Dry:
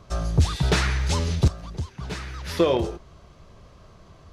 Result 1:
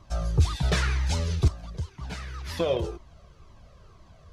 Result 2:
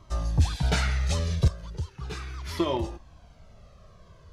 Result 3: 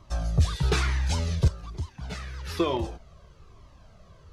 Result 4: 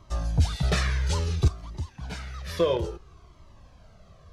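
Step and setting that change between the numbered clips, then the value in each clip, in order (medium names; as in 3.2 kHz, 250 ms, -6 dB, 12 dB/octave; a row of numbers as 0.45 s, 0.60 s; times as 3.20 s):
Shepard-style flanger, rate: 2 Hz, 0.38 Hz, 1.1 Hz, 0.59 Hz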